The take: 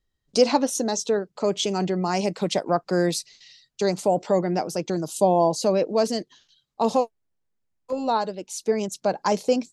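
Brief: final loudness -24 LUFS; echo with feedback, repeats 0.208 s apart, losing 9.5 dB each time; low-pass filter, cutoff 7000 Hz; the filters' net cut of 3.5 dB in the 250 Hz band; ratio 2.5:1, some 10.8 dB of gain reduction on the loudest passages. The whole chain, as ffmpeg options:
-af "lowpass=7k,equalizer=f=250:t=o:g=-5,acompressor=threshold=-31dB:ratio=2.5,aecho=1:1:208|416|624|832:0.335|0.111|0.0365|0.012,volume=8.5dB"

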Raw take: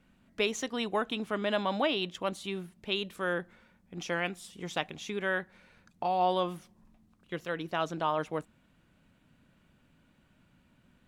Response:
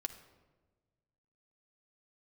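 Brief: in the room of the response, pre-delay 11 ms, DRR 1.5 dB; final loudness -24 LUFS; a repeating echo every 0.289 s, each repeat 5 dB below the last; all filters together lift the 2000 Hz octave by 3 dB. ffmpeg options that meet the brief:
-filter_complex "[0:a]equalizer=f=2k:t=o:g=4,aecho=1:1:289|578|867|1156|1445|1734|2023:0.562|0.315|0.176|0.0988|0.0553|0.031|0.0173,asplit=2[a][b];[1:a]atrim=start_sample=2205,adelay=11[c];[b][c]afir=irnorm=-1:irlink=0,volume=-0.5dB[d];[a][d]amix=inputs=2:normalize=0,volume=4dB"

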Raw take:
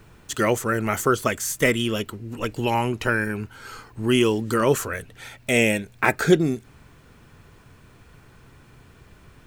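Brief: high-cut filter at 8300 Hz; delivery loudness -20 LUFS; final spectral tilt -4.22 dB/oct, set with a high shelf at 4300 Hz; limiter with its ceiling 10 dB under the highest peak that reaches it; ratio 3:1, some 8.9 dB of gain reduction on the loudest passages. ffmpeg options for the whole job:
-af "lowpass=8.3k,highshelf=f=4.3k:g=3,acompressor=threshold=-22dB:ratio=3,volume=10dB,alimiter=limit=-8dB:level=0:latency=1"

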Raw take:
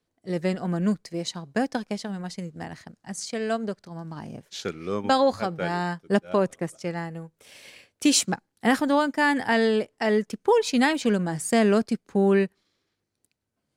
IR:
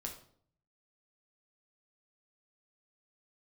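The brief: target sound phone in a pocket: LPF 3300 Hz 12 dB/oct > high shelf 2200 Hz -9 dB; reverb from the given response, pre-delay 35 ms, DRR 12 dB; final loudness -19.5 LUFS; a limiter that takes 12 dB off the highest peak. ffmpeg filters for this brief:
-filter_complex "[0:a]alimiter=limit=-20dB:level=0:latency=1,asplit=2[a][b];[1:a]atrim=start_sample=2205,adelay=35[c];[b][c]afir=irnorm=-1:irlink=0,volume=-10dB[d];[a][d]amix=inputs=2:normalize=0,lowpass=3.3k,highshelf=f=2.2k:g=-9,volume=11.5dB"

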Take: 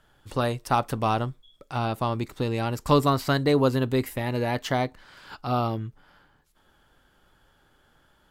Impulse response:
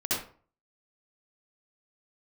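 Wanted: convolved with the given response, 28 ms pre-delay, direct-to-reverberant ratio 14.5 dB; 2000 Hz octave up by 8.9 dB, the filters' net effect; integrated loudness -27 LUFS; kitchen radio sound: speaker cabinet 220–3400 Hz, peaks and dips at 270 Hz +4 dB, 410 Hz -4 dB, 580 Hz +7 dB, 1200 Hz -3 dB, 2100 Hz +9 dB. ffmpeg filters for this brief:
-filter_complex "[0:a]equalizer=f=2k:t=o:g=6.5,asplit=2[a][b];[1:a]atrim=start_sample=2205,adelay=28[c];[b][c]afir=irnorm=-1:irlink=0,volume=-23dB[d];[a][d]amix=inputs=2:normalize=0,highpass=220,equalizer=f=270:t=q:w=4:g=4,equalizer=f=410:t=q:w=4:g=-4,equalizer=f=580:t=q:w=4:g=7,equalizer=f=1.2k:t=q:w=4:g=-3,equalizer=f=2.1k:t=q:w=4:g=9,lowpass=f=3.4k:w=0.5412,lowpass=f=3.4k:w=1.3066,volume=-3dB"

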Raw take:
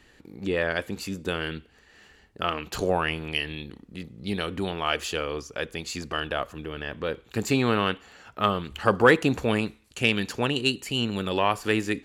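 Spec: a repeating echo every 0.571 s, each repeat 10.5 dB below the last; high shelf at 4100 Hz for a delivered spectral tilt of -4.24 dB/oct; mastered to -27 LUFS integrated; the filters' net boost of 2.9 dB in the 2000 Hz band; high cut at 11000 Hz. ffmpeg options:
-af "lowpass=11k,equalizer=f=2k:t=o:g=3,highshelf=f=4.1k:g=3.5,aecho=1:1:571|1142|1713:0.299|0.0896|0.0269,volume=-1.5dB"

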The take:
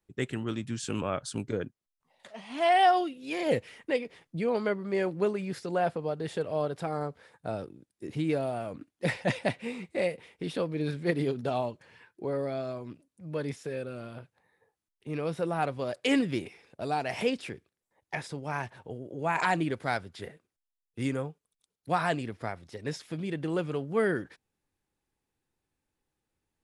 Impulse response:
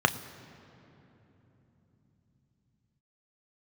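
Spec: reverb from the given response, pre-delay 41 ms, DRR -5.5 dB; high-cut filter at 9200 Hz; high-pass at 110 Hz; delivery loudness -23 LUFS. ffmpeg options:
-filter_complex "[0:a]highpass=110,lowpass=9.2k,asplit=2[a][b];[1:a]atrim=start_sample=2205,adelay=41[c];[b][c]afir=irnorm=-1:irlink=0,volume=-8.5dB[d];[a][d]amix=inputs=2:normalize=0,volume=2dB"

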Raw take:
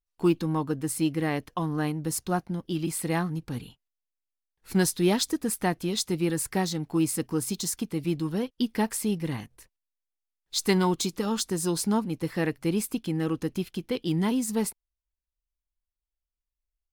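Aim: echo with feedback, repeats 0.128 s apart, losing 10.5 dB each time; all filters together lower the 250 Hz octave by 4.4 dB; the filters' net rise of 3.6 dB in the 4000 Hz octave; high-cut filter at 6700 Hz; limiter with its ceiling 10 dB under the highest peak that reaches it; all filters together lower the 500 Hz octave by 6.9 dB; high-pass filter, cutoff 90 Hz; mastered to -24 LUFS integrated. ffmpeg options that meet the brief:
-af "highpass=90,lowpass=6.7k,equalizer=f=250:t=o:g=-3.5,equalizer=f=500:t=o:g=-8.5,equalizer=f=4k:t=o:g=5,alimiter=limit=-20.5dB:level=0:latency=1,aecho=1:1:128|256|384:0.299|0.0896|0.0269,volume=8.5dB"

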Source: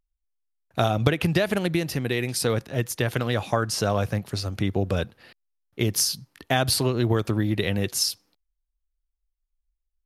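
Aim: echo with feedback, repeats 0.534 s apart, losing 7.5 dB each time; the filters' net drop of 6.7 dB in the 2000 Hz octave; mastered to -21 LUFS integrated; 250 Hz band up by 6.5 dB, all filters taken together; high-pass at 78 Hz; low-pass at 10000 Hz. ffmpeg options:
-af "highpass=78,lowpass=10k,equalizer=f=250:t=o:g=9,equalizer=f=2k:t=o:g=-9,aecho=1:1:534|1068|1602|2136|2670:0.422|0.177|0.0744|0.0312|0.0131,volume=1.5dB"

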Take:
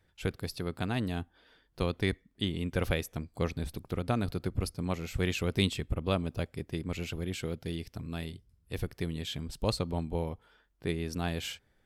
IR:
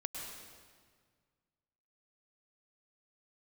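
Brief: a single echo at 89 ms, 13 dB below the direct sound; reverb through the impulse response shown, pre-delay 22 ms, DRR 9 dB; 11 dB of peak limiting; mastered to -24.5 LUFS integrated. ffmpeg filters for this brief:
-filter_complex "[0:a]alimiter=limit=-22.5dB:level=0:latency=1,aecho=1:1:89:0.224,asplit=2[a][b];[1:a]atrim=start_sample=2205,adelay=22[c];[b][c]afir=irnorm=-1:irlink=0,volume=-9dB[d];[a][d]amix=inputs=2:normalize=0,volume=11.5dB"

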